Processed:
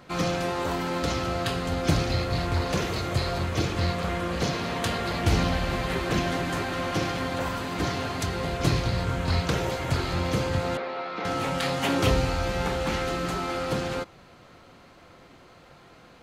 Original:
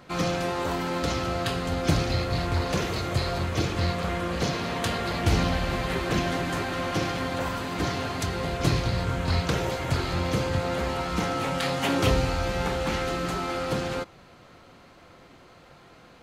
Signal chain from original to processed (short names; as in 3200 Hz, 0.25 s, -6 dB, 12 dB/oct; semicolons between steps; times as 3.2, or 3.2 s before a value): 10.77–11.25 speaker cabinet 430–3700 Hz, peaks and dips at 940 Hz -5 dB, 1700 Hz -4 dB, 3000 Hz -8 dB